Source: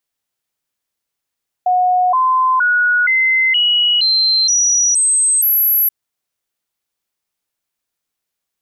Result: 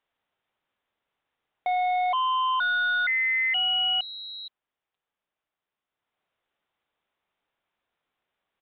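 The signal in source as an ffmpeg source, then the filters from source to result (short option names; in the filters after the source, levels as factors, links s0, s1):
-f lavfi -i "aevalsrc='0.299*clip(min(mod(t,0.47),0.47-mod(t,0.47))/0.005,0,1)*sin(2*PI*729*pow(2,floor(t/0.47)/2)*mod(t,0.47))':d=4.23:s=44100"
-af "equalizer=f=810:t=o:w=2.5:g=6.5,alimiter=limit=0.15:level=0:latency=1:release=324,aresample=8000,volume=15,asoftclip=hard,volume=0.0668,aresample=44100"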